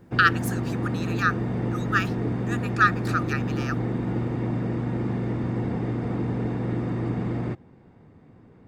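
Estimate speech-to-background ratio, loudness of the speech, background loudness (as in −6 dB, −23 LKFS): 2.5 dB, −25.5 LKFS, −28.0 LKFS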